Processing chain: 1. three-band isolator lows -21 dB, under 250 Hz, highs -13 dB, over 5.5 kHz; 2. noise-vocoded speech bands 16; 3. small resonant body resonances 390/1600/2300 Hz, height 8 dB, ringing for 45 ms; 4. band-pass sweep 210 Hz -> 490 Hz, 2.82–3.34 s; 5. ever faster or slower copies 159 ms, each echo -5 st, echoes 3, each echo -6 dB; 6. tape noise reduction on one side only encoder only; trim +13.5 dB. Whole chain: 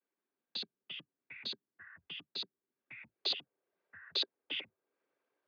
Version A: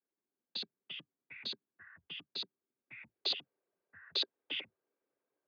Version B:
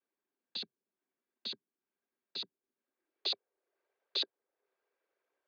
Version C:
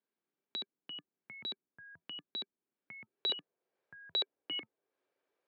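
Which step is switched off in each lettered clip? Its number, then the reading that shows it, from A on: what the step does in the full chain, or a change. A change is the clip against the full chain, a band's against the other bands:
6, momentary loudness spread change -1 LU; 5, 2 kHz band -7.0 dB; 2, 2 kHz band -3.5 dB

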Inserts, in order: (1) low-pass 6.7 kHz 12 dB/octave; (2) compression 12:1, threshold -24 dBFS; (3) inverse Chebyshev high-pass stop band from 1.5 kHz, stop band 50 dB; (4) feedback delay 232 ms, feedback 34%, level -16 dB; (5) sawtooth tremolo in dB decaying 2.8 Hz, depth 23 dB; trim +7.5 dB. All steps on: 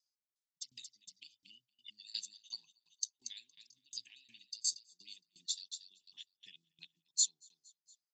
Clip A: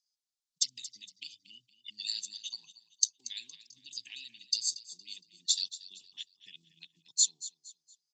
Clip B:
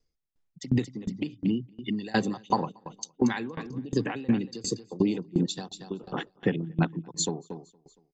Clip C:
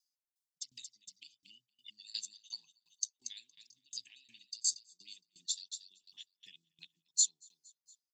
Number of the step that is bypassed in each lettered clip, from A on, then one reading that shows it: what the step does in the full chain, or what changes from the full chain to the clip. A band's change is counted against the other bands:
5, momentary loudness spread change -4 LU; 3, crest factor change -9.0 dB; 1, loudness change +2.0 LU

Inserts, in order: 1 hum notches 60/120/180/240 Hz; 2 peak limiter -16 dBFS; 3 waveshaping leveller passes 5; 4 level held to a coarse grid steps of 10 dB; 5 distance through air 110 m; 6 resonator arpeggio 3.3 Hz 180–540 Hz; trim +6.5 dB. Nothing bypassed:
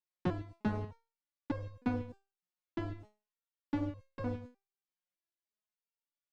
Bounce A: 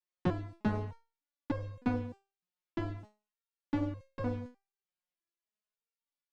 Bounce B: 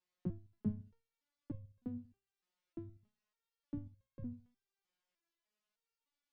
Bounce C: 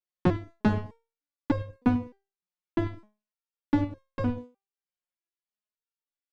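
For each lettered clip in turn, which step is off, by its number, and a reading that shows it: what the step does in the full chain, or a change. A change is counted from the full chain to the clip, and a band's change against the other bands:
4, loudness change +2.0 LU; 3, crest factor change +3.0 dB; 2, momentary loudness spread change -1 LU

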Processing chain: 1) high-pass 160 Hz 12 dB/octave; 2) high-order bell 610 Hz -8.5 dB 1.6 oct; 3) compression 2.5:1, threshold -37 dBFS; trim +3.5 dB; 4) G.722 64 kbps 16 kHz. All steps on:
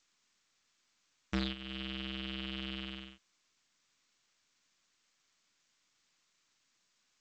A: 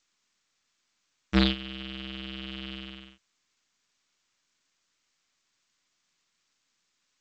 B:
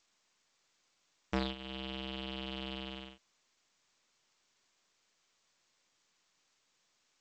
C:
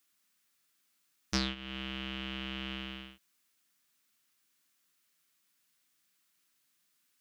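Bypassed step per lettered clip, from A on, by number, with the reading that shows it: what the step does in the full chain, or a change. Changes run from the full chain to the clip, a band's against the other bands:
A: 3, mean gain reduction 3.5 dB; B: 2, 1 kHz band +6.5 dB; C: 4, 8 kHz band +12.5 dB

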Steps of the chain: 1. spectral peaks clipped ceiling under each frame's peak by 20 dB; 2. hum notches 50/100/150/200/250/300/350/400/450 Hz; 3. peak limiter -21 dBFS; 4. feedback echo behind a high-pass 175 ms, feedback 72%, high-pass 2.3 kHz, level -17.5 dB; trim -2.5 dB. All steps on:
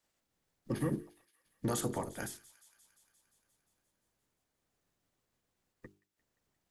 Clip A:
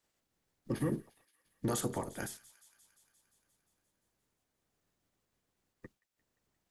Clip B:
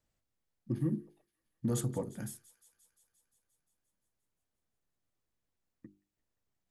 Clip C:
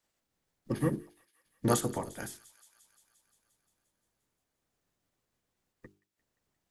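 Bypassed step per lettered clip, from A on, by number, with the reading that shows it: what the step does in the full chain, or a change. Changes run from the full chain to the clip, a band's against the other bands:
2, momentary loudness spread change -3 LU; 1, 2 kHz band -8.0 dB; 3, crest factor change +7.0 dB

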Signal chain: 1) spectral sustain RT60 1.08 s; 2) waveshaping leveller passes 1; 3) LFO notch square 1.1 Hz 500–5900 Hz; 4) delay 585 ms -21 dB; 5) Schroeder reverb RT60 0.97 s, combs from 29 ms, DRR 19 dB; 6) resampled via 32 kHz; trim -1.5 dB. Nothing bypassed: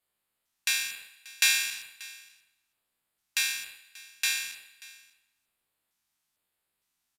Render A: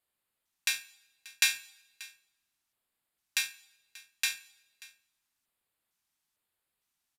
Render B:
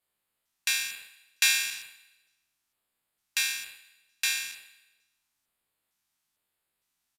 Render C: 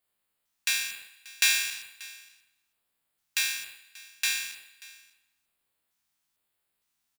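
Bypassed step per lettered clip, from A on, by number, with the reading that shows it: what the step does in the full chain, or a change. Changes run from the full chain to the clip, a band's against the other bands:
1, crest factor change +4.5 dB; 4, momentary loudness spread change -2 LU; 6, crest factor change +2.0 dB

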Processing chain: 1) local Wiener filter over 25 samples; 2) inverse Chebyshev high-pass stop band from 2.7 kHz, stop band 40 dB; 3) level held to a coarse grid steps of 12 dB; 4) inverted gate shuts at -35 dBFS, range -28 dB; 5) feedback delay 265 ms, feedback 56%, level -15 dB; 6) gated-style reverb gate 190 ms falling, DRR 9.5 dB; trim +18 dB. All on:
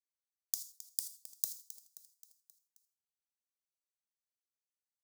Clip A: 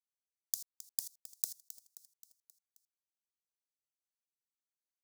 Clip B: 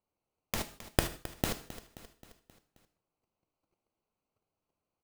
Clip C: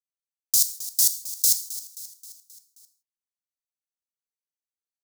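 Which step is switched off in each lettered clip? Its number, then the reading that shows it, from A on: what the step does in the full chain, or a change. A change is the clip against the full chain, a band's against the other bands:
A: 6, echo-to-direct -8.0 dB to -13.5 dB; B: 2, momentary loudness spread change +2 LU; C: 4, momentary loudness spread change +3 LU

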